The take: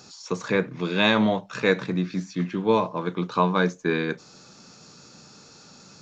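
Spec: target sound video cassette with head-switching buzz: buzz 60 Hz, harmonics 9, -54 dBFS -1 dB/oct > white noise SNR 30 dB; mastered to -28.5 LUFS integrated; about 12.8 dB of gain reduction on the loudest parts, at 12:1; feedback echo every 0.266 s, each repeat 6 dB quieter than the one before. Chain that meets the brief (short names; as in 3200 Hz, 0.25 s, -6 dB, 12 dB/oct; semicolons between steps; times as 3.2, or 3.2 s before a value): compressor 12:1, threshold -28 dBFS; feedback echo 0.266 s, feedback 50%, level -6 dB; buzz 60 Hz, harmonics 9, -54 dBFS -1 dB/oct; white noise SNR 30 dB; gain +4.5 dB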